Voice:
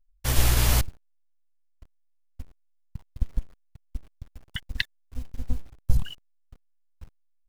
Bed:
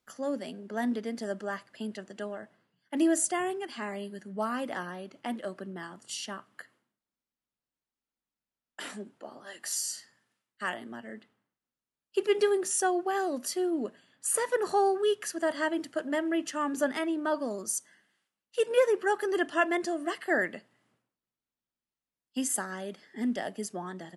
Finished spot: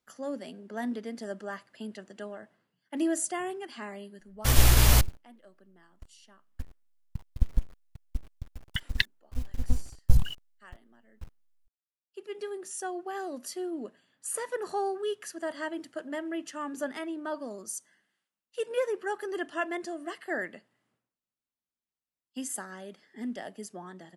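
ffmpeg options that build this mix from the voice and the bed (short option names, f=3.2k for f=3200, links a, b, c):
-filter_complex "[0:a]adelay=4200,volume=1.5dB[a];[1:a]volume=11dB,afade=t=out:st=3.77:d=0.88:silence=0.149624,afade=t=in:st=12:d=1.34:silence=0.199526[b];[a][b]amix=inputs=2:normalize=0"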